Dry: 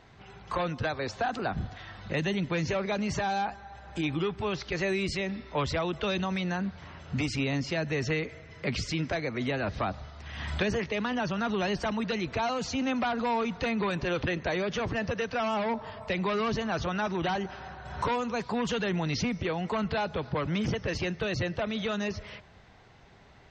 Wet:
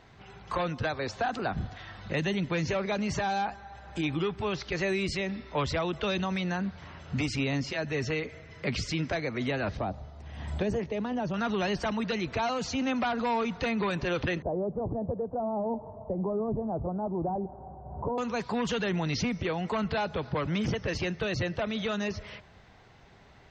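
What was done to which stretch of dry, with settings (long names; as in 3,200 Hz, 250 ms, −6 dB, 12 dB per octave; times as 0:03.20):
0:07.69–0:08.34: notch comb filter 170 Hz
0:09.77–0:11.34: flat-topped bell 2,600 Hz −10 dB 2.8 octaves
0:14.42–0:18.18: Butterworth low-pass 850 Hz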